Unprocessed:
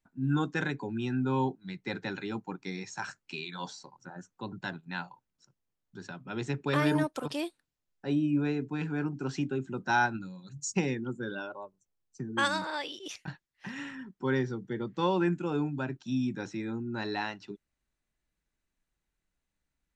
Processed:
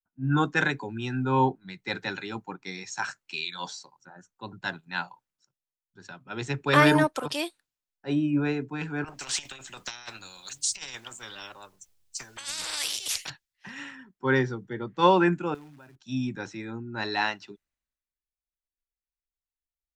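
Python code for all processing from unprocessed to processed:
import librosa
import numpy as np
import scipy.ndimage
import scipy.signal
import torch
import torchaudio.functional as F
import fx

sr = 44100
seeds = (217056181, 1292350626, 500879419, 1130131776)

y = fx.chain(x, sr, fx.over_compress(threshold_db=-34.0, ratio=-0.5),
    fx.harmonic_tremolo(hz=1.7, depth_pct=50, crossover_hz=620.0),
    fx.spectral_comp(ratio=4.0), at=(9.04, 13.3))
y = fx.chain(y, sr, fx.quant_float(bits=2),
    fx.level_steps(step_db=23), at=(15.54, 15.96))
y = fx.peak_eq(y, sr, hz=210.0, db=-7.5, octaves=2.7)
y = fx.band_widen(y, sr, depth_pct=70)
y = y * librosa.db_to_amplitude(7.0)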